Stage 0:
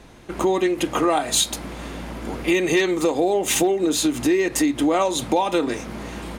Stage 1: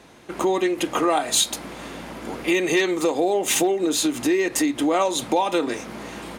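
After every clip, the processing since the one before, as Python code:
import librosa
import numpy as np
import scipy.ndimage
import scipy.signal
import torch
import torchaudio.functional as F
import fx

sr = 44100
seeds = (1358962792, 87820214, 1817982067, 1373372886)

y = fx.highpass(x, sr, hz=230.0, slope=6)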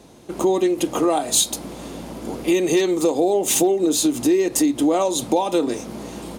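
y = fx.peak_eq(x, sr, hz=1800.0, db=-12.5, octaves=1.8)
y = y * 10.0 ** (4.5 / 20.0)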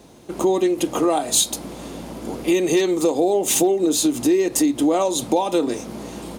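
y = fx.quant_dither(x, sr, seeds[0], bits=12, dither='triangular')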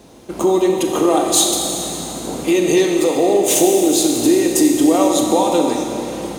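y = fx.rev_schroeder(x, sr, rt60_s=3.1, comb_ms=29, drr_db=1.5)
y = y * 10.0 ** (2.5 / 20.0)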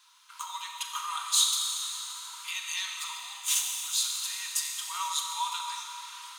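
y = scipy.signal.sosfilt(scipy.signal.cheby1(6, 6, 940.0, 'highpass', fs=sr, output='sos'), x)
y = y * 10.0 ** (-5.5 / 20.0)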